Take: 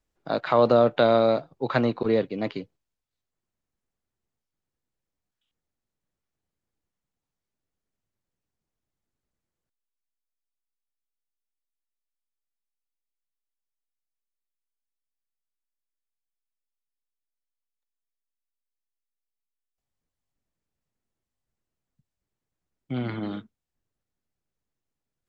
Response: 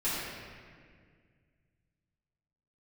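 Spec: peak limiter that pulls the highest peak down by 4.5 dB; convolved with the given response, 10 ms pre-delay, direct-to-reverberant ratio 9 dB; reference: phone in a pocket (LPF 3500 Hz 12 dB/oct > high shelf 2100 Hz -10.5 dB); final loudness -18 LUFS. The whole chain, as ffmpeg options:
-filter_complex "[0:a]alimiter=limit=-11.5dB:level=0:latency=1,asplit=2[a][b];[1:a]atrim=start_sample=2205,adelay=10[c];[b][c]afir=irnorm=-1:irlink=0,volume=-17.5dB[d];[a][d]amix=inputs=2:normalize=0,lowpass=3.5k,highshelf=f=2.1k:g=-10.5,volume=8dB"

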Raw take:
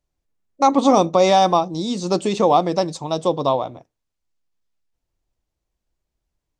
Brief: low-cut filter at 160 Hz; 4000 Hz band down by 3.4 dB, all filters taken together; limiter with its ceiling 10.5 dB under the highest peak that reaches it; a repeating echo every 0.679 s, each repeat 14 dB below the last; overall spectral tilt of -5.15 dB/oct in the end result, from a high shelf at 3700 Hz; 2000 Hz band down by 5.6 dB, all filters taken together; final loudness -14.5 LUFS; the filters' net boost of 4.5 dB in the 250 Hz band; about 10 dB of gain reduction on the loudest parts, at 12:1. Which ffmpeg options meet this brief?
-af "highpass=160,equalizer=f=250:t=o:g=6.5,equalizer=f=2k:t=o:g=-7,highshelf=f=3.7k:g=7,equalizer=f=4k:t=o:g=-7,acompressor=threshold=-16dB:ratio=12,alimiter=limit=-17dB:level=0:latency=1,aecho=1:1:679|1358:0.2|0.0399,volume=12.5dB"

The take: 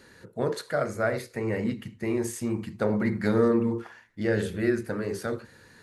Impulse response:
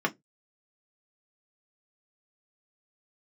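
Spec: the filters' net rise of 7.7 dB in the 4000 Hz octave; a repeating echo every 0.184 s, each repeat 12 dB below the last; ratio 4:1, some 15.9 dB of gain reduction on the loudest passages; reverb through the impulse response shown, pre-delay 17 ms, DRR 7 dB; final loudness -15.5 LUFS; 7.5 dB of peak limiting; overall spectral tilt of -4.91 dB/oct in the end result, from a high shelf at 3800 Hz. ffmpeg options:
-filter_complex "[0:a]highshelf=f=3.8k:g=5.5,equalizer=f=4k:t=o:g=5.5,acompressor=threshold=-38dB:ratio=4,alimiter=level_in=6.5dB:limit=-24dB:level=0:latency=1,volume=-6.5dB,aecho=1:1:184|368|552:0.251|0.0628|0.0157,asplit=2[a][b];[1:a]atrim=start_sample=2205,adelay=17[c];[b][c]afir=irnorm=-1:irlink=0,volume=-17.5dB[d];[a][d]amix=inputs=2:normalize=0,volume=24.5dB"

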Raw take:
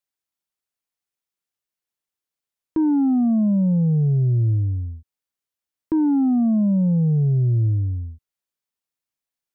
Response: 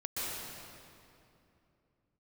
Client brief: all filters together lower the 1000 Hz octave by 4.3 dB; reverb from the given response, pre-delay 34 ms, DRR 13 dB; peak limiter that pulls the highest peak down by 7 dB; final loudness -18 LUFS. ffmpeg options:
-filter_complex "[0:a]equalizer=f=1k:t=o:g=-6,alimiter=limit=-22.5dB:level=0:latency=1,asplit=2[a][b];[1:a]atrim=start_sample=2205,adelay=34[c];[b][c]afir=irnorm=-1:irlink=0,volume=-17.5dB[d];[a][d]amix=inputs=2:normalize=0,volume=8.5dB"

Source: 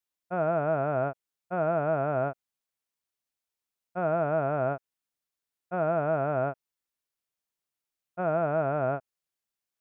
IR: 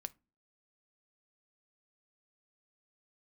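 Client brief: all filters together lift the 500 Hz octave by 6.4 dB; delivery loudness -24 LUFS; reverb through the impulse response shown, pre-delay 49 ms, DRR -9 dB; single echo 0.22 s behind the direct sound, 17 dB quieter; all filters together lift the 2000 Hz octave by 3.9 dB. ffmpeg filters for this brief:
-filter_complex "[0:a]equalizer=f=500:t=o:g=8.5,equalizer=f=2k:t=o:g=5.5,aecho=1:1:220:0.141,asplit=2[a][b];[1:a]atrim=start_sample=2205,adelay=49[c];[b][c]afir=irnorm=-1:irlink=0,volume=12.5dB[d];[a][d]amix=inputs=2:normalize=0,volume=-9.5dB"

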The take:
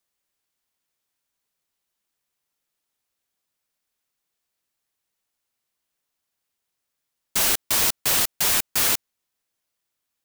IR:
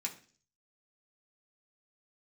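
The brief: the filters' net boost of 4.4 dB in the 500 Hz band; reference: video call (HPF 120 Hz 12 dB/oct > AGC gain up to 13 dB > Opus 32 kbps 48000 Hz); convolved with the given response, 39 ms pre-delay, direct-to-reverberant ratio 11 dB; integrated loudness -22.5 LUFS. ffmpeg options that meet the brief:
-filter_complex "[0:a]equalizer=f=500:t=o:g=5.5,asplit=2[a][b];[1:a]atrim=start_sample=2205,adelay=39[c];[b][c]afir=irnorm=-1:irlink=0,volume=-11.5dB[d];[a][d]amix=inputs=2:normalize=0,highpass=120,dynaudnorm=m=13dB,volume=-2.5dB" -ar 48000 -c:a libopus -b:a 32k

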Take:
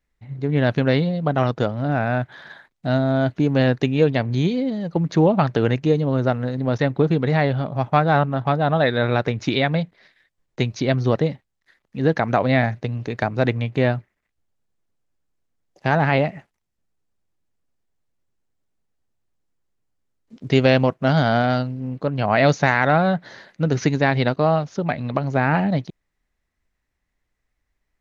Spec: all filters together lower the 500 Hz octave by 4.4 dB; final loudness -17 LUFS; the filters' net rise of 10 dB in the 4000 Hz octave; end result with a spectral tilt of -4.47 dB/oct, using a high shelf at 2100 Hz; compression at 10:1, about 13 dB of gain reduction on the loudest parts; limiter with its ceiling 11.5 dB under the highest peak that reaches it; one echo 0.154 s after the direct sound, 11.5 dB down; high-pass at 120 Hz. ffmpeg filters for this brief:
-af "highpass=120,equalizer=f=500:t=o:g=-6,highshelf=f=2.1k:g=4.5,equalizer=f=4k:t=o:g=8,acompressor=threshold=-24dB:ratio=10,alimiter=limit=-19dB:level=0:latency=1,aecho=1:1:154:0.266,volume=15dB"

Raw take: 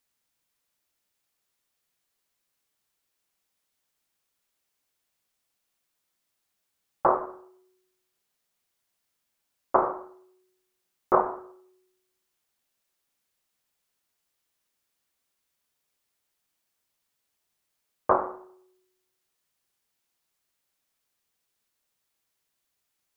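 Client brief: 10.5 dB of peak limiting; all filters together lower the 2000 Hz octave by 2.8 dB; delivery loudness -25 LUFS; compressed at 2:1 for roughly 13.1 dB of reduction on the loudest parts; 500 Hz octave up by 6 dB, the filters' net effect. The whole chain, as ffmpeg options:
-af "equalizer=f=500:t=o:g=8,equalizer=f=2k:t=o:g=-5.5,acompressor=threshold=-38dB:ratio=2,volume=18dB,alimiter=limit=-8dB:level=0:latency=1"

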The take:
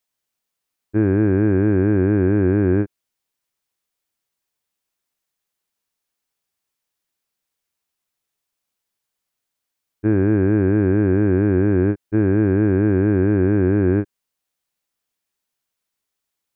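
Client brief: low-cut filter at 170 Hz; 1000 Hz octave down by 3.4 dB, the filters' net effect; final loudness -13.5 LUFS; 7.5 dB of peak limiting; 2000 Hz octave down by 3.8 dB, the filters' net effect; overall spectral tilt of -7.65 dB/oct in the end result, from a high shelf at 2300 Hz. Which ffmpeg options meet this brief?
-af "highpass=170,equalizer=f=1k:t=o:g=-4.5,equalizer=f=2k:t=o:g=-6.5,highshelf=f=2.3k:g=7,volume=12.5dB,alimiter=limit=-5dB:level=0:latency=1"

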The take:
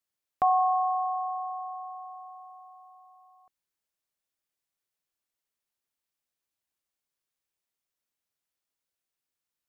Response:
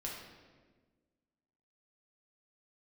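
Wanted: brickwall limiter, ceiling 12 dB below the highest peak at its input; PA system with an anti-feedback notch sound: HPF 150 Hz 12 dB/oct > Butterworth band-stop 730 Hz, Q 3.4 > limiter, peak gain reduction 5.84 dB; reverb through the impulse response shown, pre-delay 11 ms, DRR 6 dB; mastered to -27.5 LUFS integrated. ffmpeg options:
-filter_complex "[0:a]alimiter=level_in=3dB:limit=-24dB:level=0:latency=1,volume=-3dB,asplit=2[a][b];[1:a]atrim=start_sample=2205,adelay=11[c];[b][c]afir=irnorm=-1:irlink=0,volume=-6dB[d];[a][d]amix=inputs=2:normalize=0,highpass=150,asuperstop=centerf=730:order=8:qfactor=3.4,volume=15.5dB,alimiter=limit=-22dB:level=0:latency=1"

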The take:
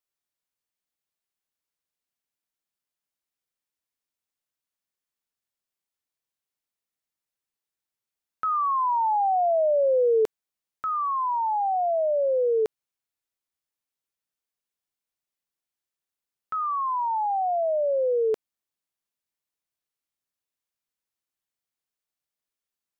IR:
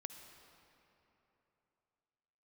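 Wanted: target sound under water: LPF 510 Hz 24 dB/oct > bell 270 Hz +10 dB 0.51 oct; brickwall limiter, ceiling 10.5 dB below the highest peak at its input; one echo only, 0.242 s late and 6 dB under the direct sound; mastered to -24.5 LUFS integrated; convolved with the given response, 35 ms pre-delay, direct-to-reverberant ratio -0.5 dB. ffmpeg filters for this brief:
-filter_complex "[0:a]alimiter=level_in=3dB:limit=-24dB:level=0:latency=1,volume=-3dB,aecho=1:1:242:0.501,asplit=2[a][b];[1:a]atrim=start_sample=2205,adelay=35[c];[b][c]afir=irnorm=-1:irlink=0,volume=4.5dB[d];[a][d]amix=inputs=2:normalize=0,lowpass=f=510:w=0.5412,lowpass=f=510:w=1.3066,equalizer=f=270:t=o:w=0.51:g=10,volume=9dB"

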